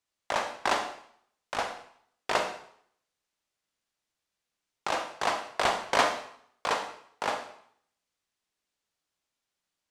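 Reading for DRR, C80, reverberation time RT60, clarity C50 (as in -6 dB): 6.0 dB, 11.5 dB, 0.65 s, 7.5 dB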